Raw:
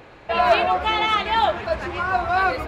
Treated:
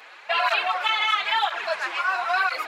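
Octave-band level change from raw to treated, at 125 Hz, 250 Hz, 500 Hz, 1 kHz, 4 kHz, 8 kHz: under -35 dB, under -15 dB, -9.5 dB, -4.5 dB, +1.5 dB, n/a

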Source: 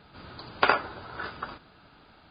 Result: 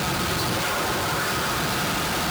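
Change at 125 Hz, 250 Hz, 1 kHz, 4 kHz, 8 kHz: +19.0 dB, +15.0 dB, +5.0 dB, +13.5 dB, n/a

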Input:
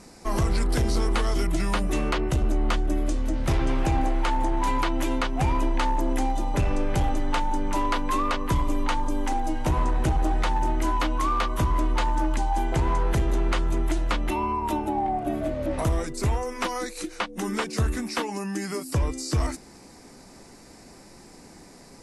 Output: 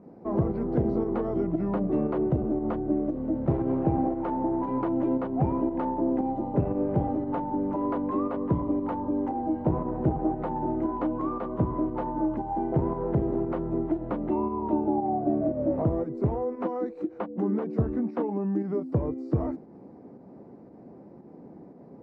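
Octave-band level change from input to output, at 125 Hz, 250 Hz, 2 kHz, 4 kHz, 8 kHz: -3.0 dB, +3.0 dB, -17.5 dB, under -25 dB, under -40 dB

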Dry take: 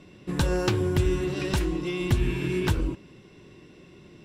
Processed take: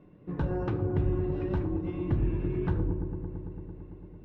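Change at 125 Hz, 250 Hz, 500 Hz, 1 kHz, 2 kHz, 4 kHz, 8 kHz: -2.5 dB, -3.5 dB, -5.0 dB, -6.0 dB, -14.0 dB, under -20 dB, under -35 dB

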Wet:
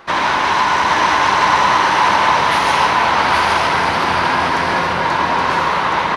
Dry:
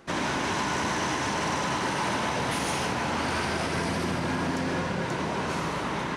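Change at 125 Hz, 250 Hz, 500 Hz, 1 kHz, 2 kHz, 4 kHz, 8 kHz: +3.5, +4.0, +9.5, +17.5, +14.5, +13.0, +5.5 dB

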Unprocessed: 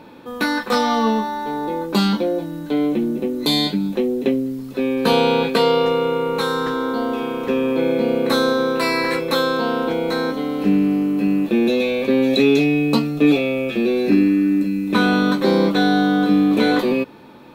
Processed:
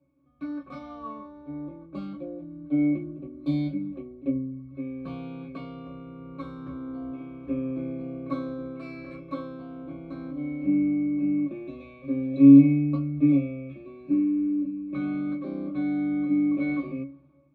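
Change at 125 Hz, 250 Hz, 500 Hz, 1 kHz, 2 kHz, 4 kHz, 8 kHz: -5.0 dB, -5.5 dB, -20.5 dB, -22.5 dB, -21.5 dB, under -30 dB, under -35 dB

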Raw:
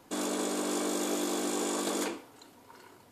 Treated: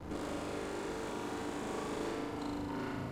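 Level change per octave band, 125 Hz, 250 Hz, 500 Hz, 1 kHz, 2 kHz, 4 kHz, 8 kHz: n/a, -5.5 dB, -5.0 dB, -3.5 dB, -4.0 dB, -10.5 dB, -17.0 dB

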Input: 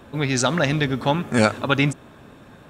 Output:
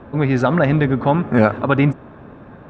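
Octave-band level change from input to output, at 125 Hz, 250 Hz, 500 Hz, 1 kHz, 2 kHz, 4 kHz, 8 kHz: +6.0 dB, +5.5 dB, +5.0 dB, +4.0 dB, 0.0 dB, -10.0 dB, under -20 dB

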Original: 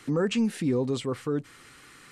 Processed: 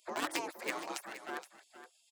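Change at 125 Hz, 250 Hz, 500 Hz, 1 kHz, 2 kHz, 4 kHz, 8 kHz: -33.5, -19.5, -15.0, +1.5, 0.0, -5.5, -2.0 dB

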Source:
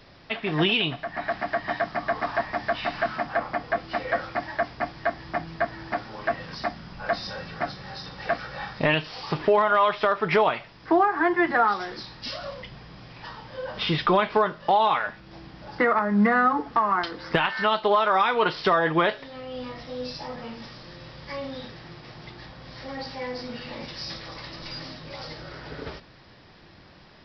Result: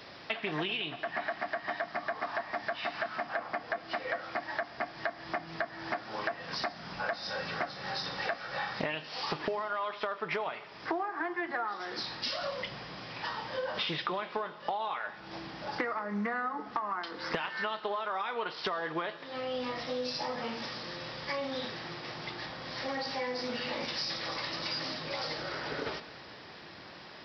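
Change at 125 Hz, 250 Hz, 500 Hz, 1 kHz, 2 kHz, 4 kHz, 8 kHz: -12.0 dB, -11.5 dB, -10.0 dB, -10.5 dB, -7.5 dB, -4.0 dB, n/a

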